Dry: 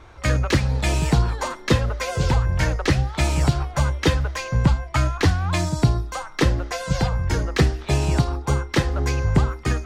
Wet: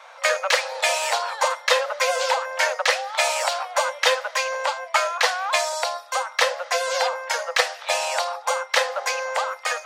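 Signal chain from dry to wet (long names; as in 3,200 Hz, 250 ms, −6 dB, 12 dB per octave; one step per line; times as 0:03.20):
Chebyshev high-pass filter 500 Hz, order 8
level +6.5 dB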